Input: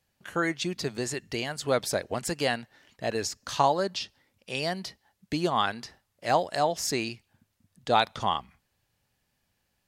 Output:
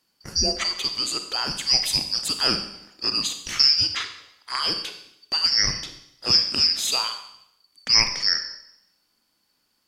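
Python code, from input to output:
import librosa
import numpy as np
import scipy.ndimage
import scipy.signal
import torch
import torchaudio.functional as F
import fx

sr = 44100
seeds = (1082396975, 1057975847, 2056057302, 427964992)

y = fx.band_shuffle(x, sr, order='2341')
y = fx.rev_schroeder(y, sr, rt60_s=0.77, comb_ms=31, drr_db=7.0)
y = y * librosa.db_to_amplitude(4.5)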